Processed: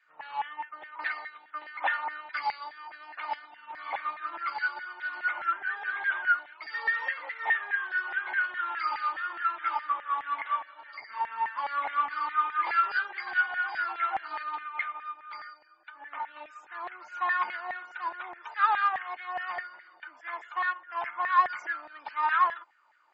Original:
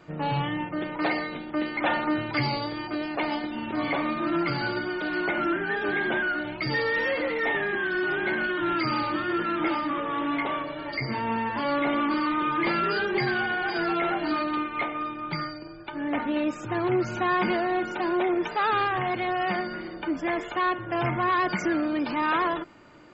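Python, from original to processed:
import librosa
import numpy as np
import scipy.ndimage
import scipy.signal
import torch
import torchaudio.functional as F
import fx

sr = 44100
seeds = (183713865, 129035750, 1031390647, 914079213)

y = fx.filter_lfo_highpass(x, sr, shape='saw_down', hz=4.8, low_hz=780.0, high_hz=1900.0, q=5.9)
y = fx.upward_expand(y, sr, threshold_db=-34.0, expansion=1.5)
y = F.gain(torch.from_numpy(y), -6.5).numpy()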